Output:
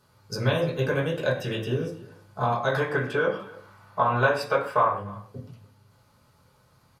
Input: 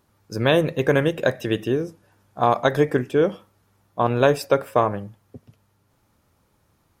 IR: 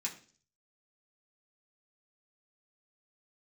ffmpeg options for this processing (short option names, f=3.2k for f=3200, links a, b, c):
-filter_complex "[0:a]asettb=1/sr,asplit=3[a][b][c];[a]atrim=end=2.704[d];[b]atrim=start=2.7:end=4.91,asetpts=PTS-STARTPTS,afade=t=in:d=0.004:c=qsin,afade=t=out:st=2.206:d=0.004:c=qsin,equalizer=f=1.3k:t=o:w=2.2:g=12.5[e];[c]atrim=start=4.906[f];[d][e]acrossfade=d=0.004:c1=hsin:c2=qsin[g];[g][f]acrossfade=d=0.004:c1=qsin:c2=hsin,acompressor=threshold=-28dB:ratio=3,aecho=1:1:295:0.0841[h];[1:a]atrim=start_sample=2205,atrim=end_sample=4410,asetrate=26019,aresample=44100[i];[h][i]afir=irnorm=-1:irlink=0"